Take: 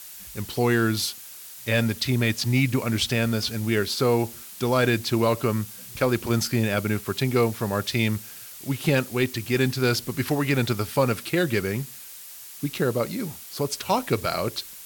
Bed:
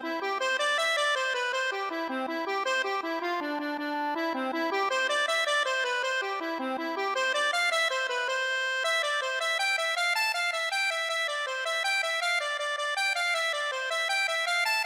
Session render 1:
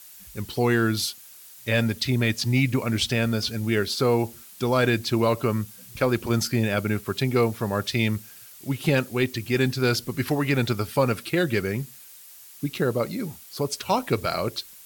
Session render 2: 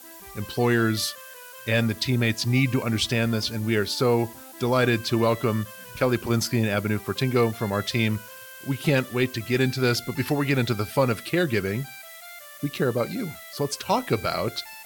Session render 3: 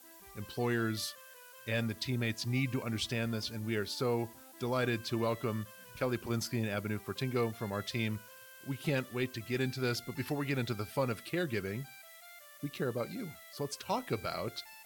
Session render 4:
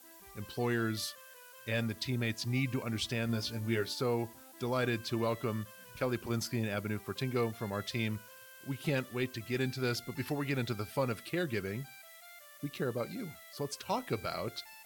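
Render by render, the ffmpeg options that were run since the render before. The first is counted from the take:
-af "afftdn=nr=6:nf=-42"
-filter_complex "[1:a]volume=-16.5dB[a];[0:a][a]amix=inputs=2:normalize=0"
-af "volume=-11dB"
-filter_complex "[0:a]asettb=1/sr,asplit=3[a][b][c];[a]atrim=end=3.274[d];[b]atrim=start=3.27:end=3.93,asetpts=PTS-STARTPTS,afade=t=in:d=0.004:c=qsin,afade=t=out:st=0.656:d=0.004:c=qsin,asplit=2[e][f];[f]adelay=17,volume=-5dB[g];[e][g]amix=inputs=2:normalize=0,atrim=end_sample=29106[h];[c]atrim=start=3.926[i];[d][h]acrossfade=d=0.004:c1=hsin:c2=qsin[j];[j][i]acrossfade=d=0.004:c1=qsin:c2=hsin"

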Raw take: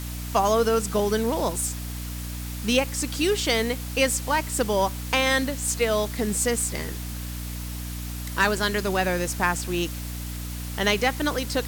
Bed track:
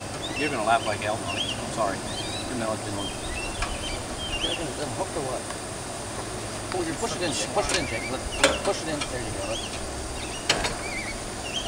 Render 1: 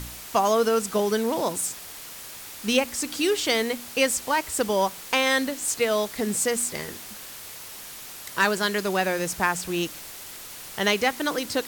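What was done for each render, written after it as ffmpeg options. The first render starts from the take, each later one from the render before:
-af "bandreject=f=60:t=h:w=4,bandreject=f=120:t=h:w=4,bandreject=f=180:t=h:w=4,bandreject=f=240:t=h:w=4,bandreject=f=300:t=h:w=4"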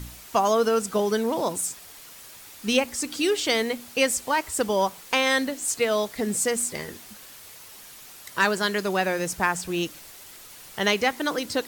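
-af "afftdn=nr=6:nf=-41"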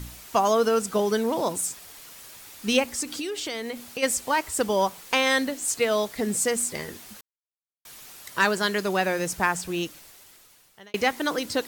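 -filter_complex "[0:a]asplit=3[a][b][c];[a]afade=t=out:st=3.02:d=0.02[d];[b]acompressor=threshold=-28dB:ratio=6:attack=3.2:release=140:knee=1:detection=peak,afade=t=in:st=3.02:d=0.02,afade=t=out:st=4.02:d=0.02[e];[c]afade=t=in:st=4.02:d=0.02[f];[d][e][f]amix=inputs=3:normalize=0,asplit=4[g][h][i][j];[g]atrim=end=7.21,asetpts=PTS-STARTPTS,afade=t=out:st=7.206:d=0.004:c=hsin[k];[h]atrim=start=7.21:end=7.85,asetpts=PTS-STARTPTS,volume=0[l];[i]atrim=start=7.85:end=10.94,asetpts=PTS-STARTPTS,afade=t=in:d=0.004:c=hsin,afade=t=out:st=1.69:d=1.4[m];[j]atrim=start=10.94,asetpts=PTS-STARTPTS,afade=t=in:d=0.004:c=hsin[n];[k][l][m][n]concat=n=4:v=0:a=1"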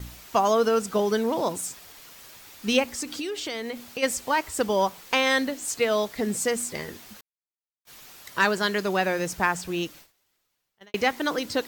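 -af "agate=range=-19dB:threshold=-46dB:ratio=16:detection=peak,equalizer=f=10k:t=o:w=0.86:g=-6"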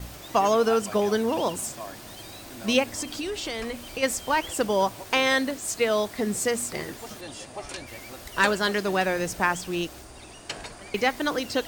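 -filter_complex "[1:a]volume=-12.5dB[a];[0:a][a]amix=inputs=2:normalize=0"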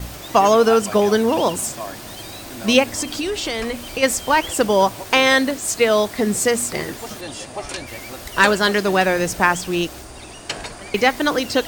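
-af "volume=7.5dB,alimiter=limit=-1dB:level=0:latency=1"

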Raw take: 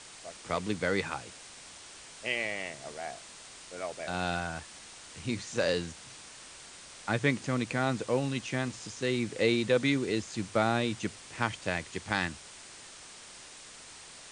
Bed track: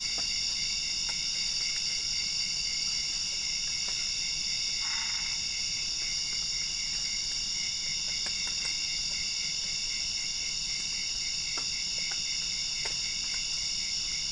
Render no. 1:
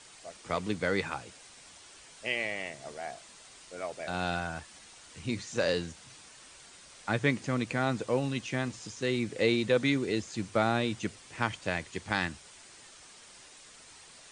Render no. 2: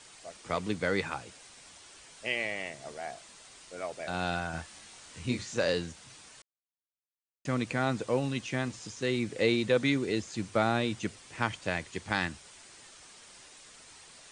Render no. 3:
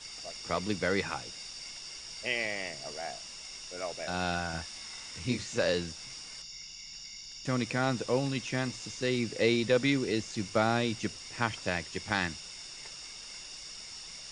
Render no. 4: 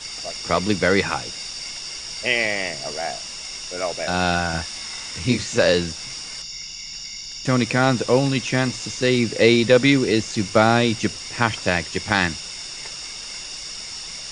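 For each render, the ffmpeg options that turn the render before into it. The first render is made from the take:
-af "afftdn=nr=6:nf=-50"
-filter_complex "[0:a]asettb=1/sr,asplit=3[a][b][c];[a]atrim=end=4.514[d];[b]atrim=start=4.51:end=5.55,asetpts=PTS-STARTPTS,afade=t=in:d=0.004:c=qsin,afade=t=out:st=1.036:d=0.004:c=qsin,asplit=2[e][f];[f]adelay=24,volume=-3.5dB[g];[e][g]amix=inputs=2:normalize=0,atrim=end_sample=45864[h];[c]atrim=start=5.546[i];[d][h]acrossfade=d=0.004:c1=hsin:c2=qsin[j];[j][i]acrossfade=d=0.004:c1=qsin:c2=hsin,asplit=3[k][l][m];[k]atrim=end=6.42,asetpts=PTS-STARTPTS,afade=t=out:st=6.416:d=0.004:c=hsin[n];[l]atrim=start=6.42:end=7.45,asetpts=PTS-STARTPTS,volume=0[o];[m]atrim=start=7.45,asetpts=PTS-STARTPTS,afade=t=in:d=0.004:c=hsin[p];[n][o][p]concat=n=3:v=0:a=1"
-filter_complex "[1:a]volume=-13.5dB[a];[0:a][a]amix=inputs=2:normalize=0"
-af "volume=11.5dB,alimiter=limit=-1dB:level=0:latency=1"

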